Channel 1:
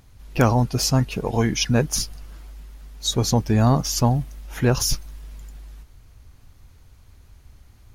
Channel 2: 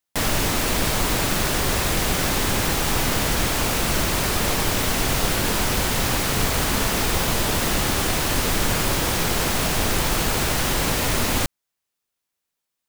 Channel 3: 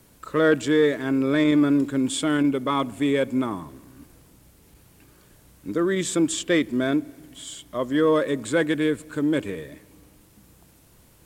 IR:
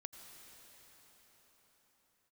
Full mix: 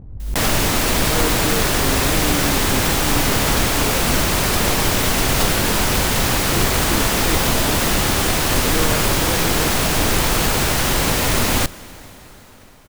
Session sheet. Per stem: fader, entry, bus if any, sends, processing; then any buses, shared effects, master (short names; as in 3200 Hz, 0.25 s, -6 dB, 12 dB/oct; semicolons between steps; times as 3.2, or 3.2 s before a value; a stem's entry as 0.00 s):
-16.5 dB, 0.00 s, no send, low-pass opened by the level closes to 410 Hz, open at -16 dBFS; resonator 50 Hz, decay 0.37 s, harmonics all, mix 40%
+2.0 dB, 0.20 s, send -6.5 dB, dry
-7.5 dB, 0.75 s, no send, dry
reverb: on, pre-delay 79 ms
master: backwards sustainer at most 58 dB/s